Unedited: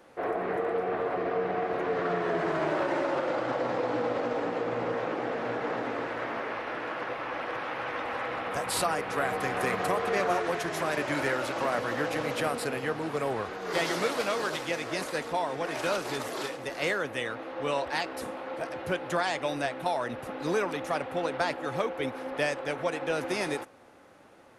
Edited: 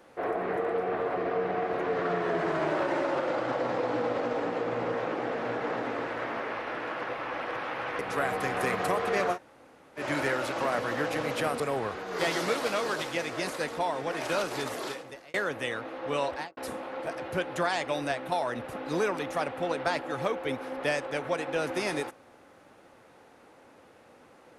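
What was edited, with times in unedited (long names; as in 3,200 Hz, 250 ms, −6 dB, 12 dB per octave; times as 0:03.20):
0:07.99–0:08.99: remove
0:10.34–0:11.00: fill with room tone, crossfade 0.10 s
0:12.60–0:13.14: remove
0:16.32–0:16.88: fade out
0:17.85–0:18.11: fade out and dull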